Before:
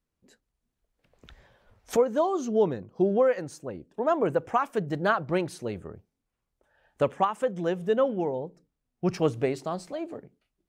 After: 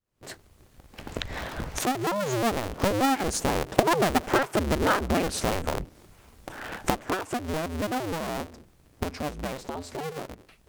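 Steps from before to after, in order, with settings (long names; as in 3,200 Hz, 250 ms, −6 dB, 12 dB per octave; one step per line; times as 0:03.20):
sub-harmonics by changed cycles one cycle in 2, inverted
camcorder AGC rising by 79 dB per second
source passing by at 0:04.36, 20 m/s, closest 26 metres
in parallel at −3 dB: downward compressor, threshold −34 dBFS, peak gain reduction 18 dB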